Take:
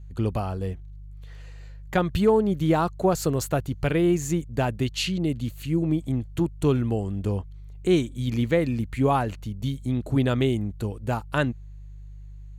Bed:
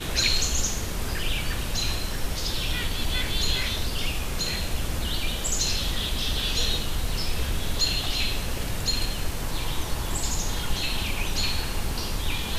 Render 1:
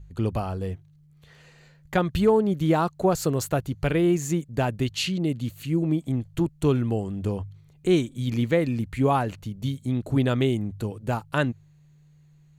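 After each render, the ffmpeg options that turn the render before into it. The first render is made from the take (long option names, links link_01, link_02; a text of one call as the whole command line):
ffmpeg -i in.wav -af "bandreject=frequency=50:width_type=h:width=4,bandreject=frequency=100:width_type=h:width=4" out.wav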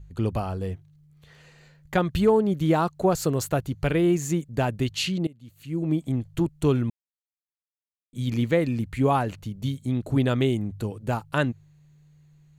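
ffmpeg -i in.wav -filter_complex "[0:a]asplit=4[link_01][link_02][link_03][link_04];[link_01]atrim=end=5.27,asetpts=PTS-STARTPTS,afade=type=out:start_time=5.266:duration=0.004:curve=hsin:silence=0.0794328[link_05];[link_02]atrim=start=5.27:end=6.9,asetpts=PTS-STARTPTS,afade=type=in:duration=0.66:curve=qua:silence=0.0794328,afade=type=out:start_time=1.626:duration=0.004:curve=hsin[link_06];[link_03]atrim=start=6.9:end=8.13,asetpts=PTS-STARTPTS,volume=0[link_07];[link_04]atrim=start=8.13,asetpts=PTS-STARTPTS,afade=type=in:duration=0.004:curve=hsin[link_08];[link_05][link_06][link_07][link_08]concat=n=4:v=0:a=1" out.wav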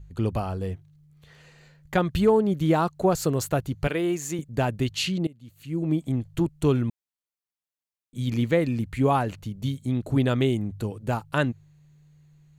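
ffmpeg -i in.wav -filter_complex "[0:a]asettb=1/sr,asplit=3[link_01][link_02][link_03];[link_01]atrim=end=3.874[link_04];[link_02]atrim=start=3.87:end=4.39,asetpts=PTS-STARTPTS,afade=type=in:duration=0.004:curve=qsin,afade=type=out:start_time=0.516:duration=0.004:curve=qsin,highpass=frequency=430:poles=1[link_05];[link_03]atrim=start=4.386[link_06];[link_04][link_05]acrossfade=duration=0.004:curve1=hsin:curve2=qsin[link_07];[link_07][link_06]acrossfade=duration=0.004:curve1=qsin:curve2=hsin" out.wav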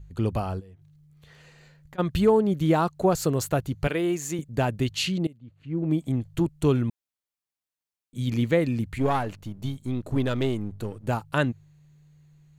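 ffmpeg -i in.wav -filter_complex "[0:a]asplit=3[link_01][link_02][link_03];[link_01]afade=type=out:start_time=0.59:duration=0.02[link_04];[link_02]acompressor=threshold=-44dB:ratio=20:attack=3.2:release=140:knee=1:detection=peak,afade=type=in:start_time=0.59:duration=0.02,afade=type=out:start_time=1.98:duration=0.02[link_05];[link_03]afade=type=in:start_time=1.98:duration=0.02[link_06];[link_04][link_05][link_06]amix=inputs=3:normalize=0,asplit=3[link_07][link_08][link_09];[link_07]afade=type=out:start_time=5.37:duration=0.02[link_10];[link_08]adynamicsmooth=sensitivity=3:basefreq=1900,afade=type=in:start_time=5.37:duration=0.02,afade=type=out:start_time=5.89:duration=0.02[link_11];[link_09]afade=type=in:start_time=5.89:duration=0.02[link_12];[link_10][link_11][link_12]amix=inputs=3:normalize=0,asettb=1/sr,asplit=3[link_13][link_14][link_15];[link_13]atrim=end=8.984[link_16];[link_14]atrim=start=8.98:end=11.07,asetpts=PTS-STARTPTS,afade=type=in:duration=0.004:curve=qsin,afade=type=out:start_time=2.086:duration=0.004:curve=qsin,aeval=exprs='if(lt(val(0),0),0.447*val(0),val(0))':channel_layout=same[link_17];[link_15]atrim=start=11.066[link_18];[link_16][link_17]acrossfade=duration=0.004:curve1=hsin:curve2=qsin[link_19];[link_19][link_18]acrossfade=duration=0.004:curve1=qsin:curve2=hsin" out.wav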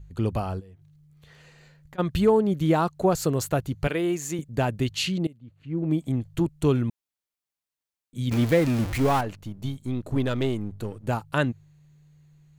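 ffmpeg -i in.wav -filter_complex "[0:a]asettb=1/sr,asplit=3[link_01][link_02][link_03];[link_01]atrim=end=8.314[link_04];[link_02]atrim=start=8.31:end=9.21,asetpts=PTS-STARTPTS,afade=type=in:duration=0.004:curve=qsin,afade=type=out:start_time=0.896:duration=0.004:curve=qsin,aeval=exprs='val(0)+0.5*0.0473*sgn(val(0))':channel_layout=same[link_05];[link_03]atrim=start=9.206[link_06];[link_04][link_05]acrossfade=duration=0.004:curve1=hsin:curve2=qsin[link_07];[link_07][link_06]acrossfade=duration=0.004:curve1=qsin:curve2=hsin" out.wav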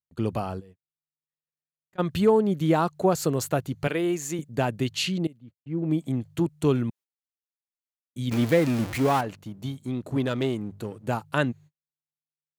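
ffmpeg -i in.wav -af "highpass=120,agate=range=-52dB:threshold=-46dB:ratio=16:detection=peak" out.wav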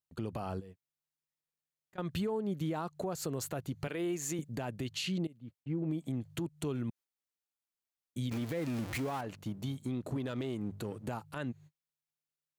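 ffmpeg -i in.wav -af "acompressor=threshold=-31dB:ratio=6,alimiter=level_in=3dB:limit=-24dB:level=0:latency=1:release=62,volume=-3dB" out.wav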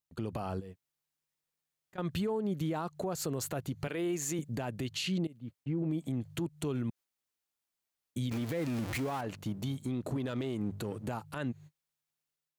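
ffmpeg -i in.wav -af "dynaudnorm=framelen=120:gausssize=5:maxgain=4.5dB,alimiter=level_in=2dB:limit=-24dB:level=0:latency=1:release=96,volume=-2dB" out.wav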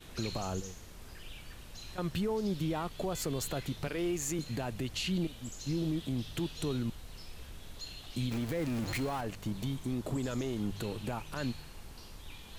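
ffmpeg -i in.wav -i bed.wav -filter_complex "[1:a]volume=-20.5dB[link_01];[0:a][link_01]amix=inputs=2:normalize=0" out.wav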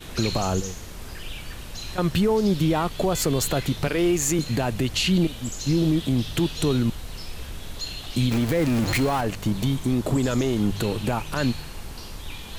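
ffmpeg -i in.wav -af "volume=12dB" out.wav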